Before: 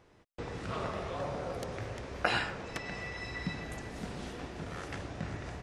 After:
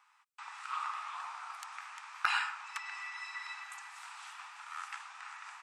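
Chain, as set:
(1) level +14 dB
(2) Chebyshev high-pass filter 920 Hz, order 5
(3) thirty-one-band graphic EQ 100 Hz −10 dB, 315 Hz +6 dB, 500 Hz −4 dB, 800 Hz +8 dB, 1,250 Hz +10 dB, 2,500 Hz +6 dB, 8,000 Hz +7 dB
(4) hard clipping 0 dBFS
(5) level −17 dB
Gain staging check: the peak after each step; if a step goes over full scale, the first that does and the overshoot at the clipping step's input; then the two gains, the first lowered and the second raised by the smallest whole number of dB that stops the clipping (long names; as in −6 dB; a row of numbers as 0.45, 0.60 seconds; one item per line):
+3.0, −1.0, +5.0, 0.0, −17.0 dBFS
step 1, 5.0 dB
step 1 +9 dB, step 5 −12 dB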